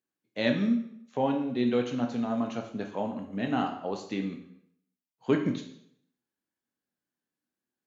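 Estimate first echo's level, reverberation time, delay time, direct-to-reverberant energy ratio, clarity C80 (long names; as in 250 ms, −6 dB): no echo audible, 0.70 s, no echo audible, 3.5 dB, 11.0 dB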